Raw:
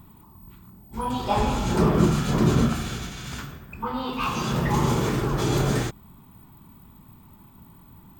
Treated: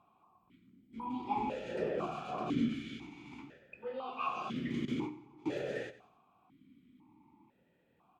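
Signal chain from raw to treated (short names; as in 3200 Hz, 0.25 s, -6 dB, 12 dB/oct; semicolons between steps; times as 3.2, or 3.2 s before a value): 4.85–5.48 gate with hold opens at -13 dBFS; feedback echo 92 ms, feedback 45%, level -16 dB; vowel sequencer 2 Hz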